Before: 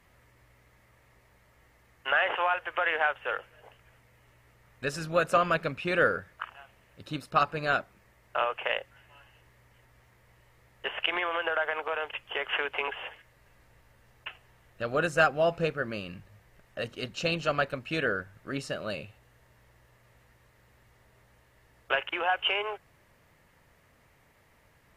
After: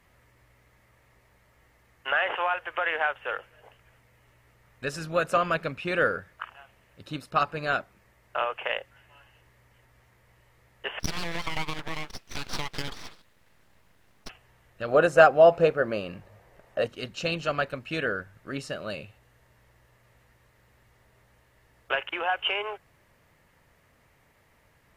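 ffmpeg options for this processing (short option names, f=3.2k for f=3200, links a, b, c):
-filter_complex "[0:a]asplit=3[a][b][c];[a]afade=t=out:st=10.99:d=0.02[d];[b]aeval=exprs='abs(val(0))':c=same,afade=t=in:st=10.99:d=0.02,afade=t=out:st=14.28:d=0.02[e];[c]afade=t=in:st=14.28:d=0.02[f];[d][e][f]amix=inputs=3:normalize=0,asettb=1/sr,asplit=3[g][h][i];[g]atrim=end=14.884[j];[h]atrim=start=14.88:end=16.87,asetpts=PTS-STARTPTS,afade=t=in:d=0.004:c=qsin,afade=t=out:st=1.986:d=0.004:c=qsin,equalizer=f=610:w=0.72:g=10[k];[i]atrim=start=16.866[l];[j][k]acrossfade=d=0.004:c1=hsin:c2=qsin[m];[m][l]acrossfade=d=0.004:c1=qsin:c2=hsin"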